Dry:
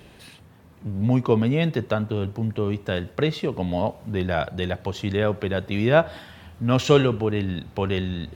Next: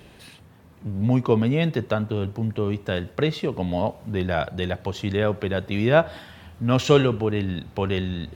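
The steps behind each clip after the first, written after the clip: no audible change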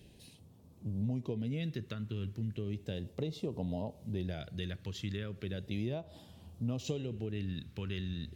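compression 12:1, threshold -22 dBFS, peak gain reduction 12.5 dB; phase shifter stages 2, 0.35 Hz, lowest notch 720–1700 Hz; trim -8.5 dB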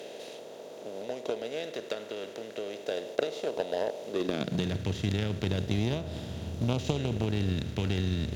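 spectral levelling over time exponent 0.4; high-pass sweep 520 Hz -> 76 Hz, 4.04–4.87 s; Chebyshev shaper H 3 -13 dB, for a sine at -16.5 dBFS; trim +7 dB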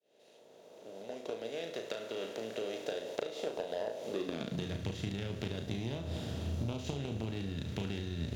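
fade-in on the opening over 2.66 s; compression, threshold -34 dBFS, peak gain reduction 13 dB; on a send: flutter echo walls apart 6.1 m, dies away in 0.34 s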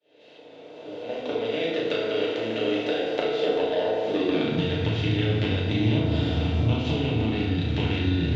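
resonant low-pass 3.2 kHz, resonance Q 1.7; FDN reverb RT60 1.5 s, low-frequency decay 1.05×, high-frequency decay 0.5×, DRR -5 dB; trim +6 dB

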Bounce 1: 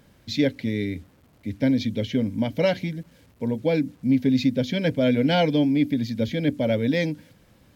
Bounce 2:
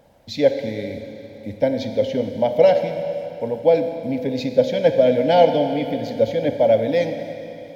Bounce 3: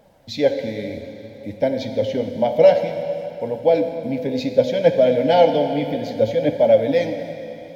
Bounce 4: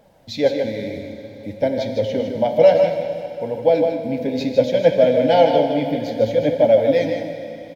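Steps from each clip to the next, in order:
high-order bell 660 Hz +13.5 dB 1.1 oct; harmonic-percussive split percussive +5 dB; Schroeder reverb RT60 3.2 s, combs from 28 ms, DRR 6.5 dB; trim -5.5 dB
flange 0.6 Hz, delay 4.5 ms, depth 9.7 ms, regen +55%; trim +4.5 dB
delay 155 ms -6.5 dB

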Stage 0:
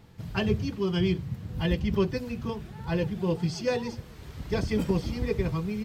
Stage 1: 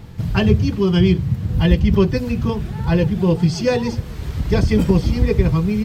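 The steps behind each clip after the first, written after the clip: bass shelf 160 Hz +8.5 dB; in parallel at -1.5 dB: compression, threshold -30 dBFS, peak gain reduction 14 dB; on the sum: trim +6 dB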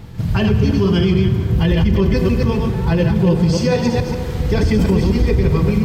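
chunks repeated in reverse 143 ms, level -3.5 dB; reverberation RT60 4.1 s, pre-delay 23 ms, DRR 9 dB; loudness maximiser +7.5 dB; trim -5.5 dB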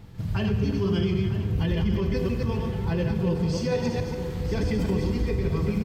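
feedback comb 100 Hz, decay 1.7 s, harmonics all, mix 70%; delay 953 ms -12 dB; trim -1 dB

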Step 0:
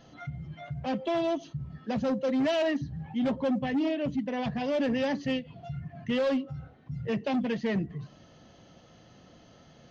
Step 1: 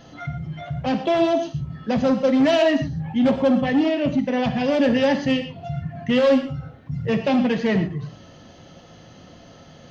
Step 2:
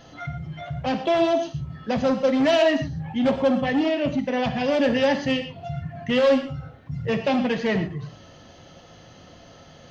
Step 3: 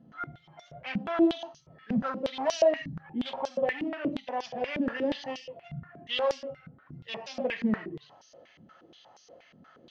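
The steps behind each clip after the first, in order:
gated-style reverb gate 150 ms flat, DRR 6.5 dB; trim +8.5 dB
peaking EQ 210 Hz -4.5 dB 1.6 oct
step-sequenced band-pass 8.4 Hz 210–5600 Hz; trim +3 dB

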